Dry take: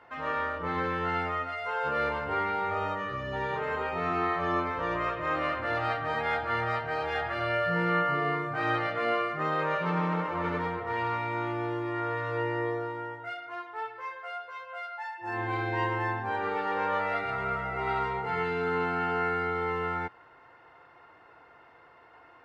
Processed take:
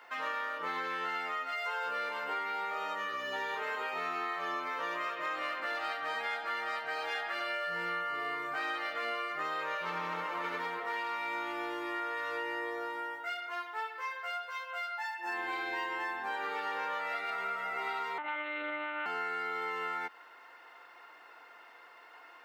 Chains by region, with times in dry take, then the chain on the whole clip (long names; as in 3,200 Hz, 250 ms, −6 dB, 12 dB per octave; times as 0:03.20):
0:18.18–0:19.06: mains-hum notches 50/100/150/200/250 Hz + one-pitch LPC vocoder at 8 kHz 300 Hz
whole clip: high-pass filter 190 Hz 24 dB per octave; spectral tilt +4 dB per octave; downward compressor, threshold −33 dBFS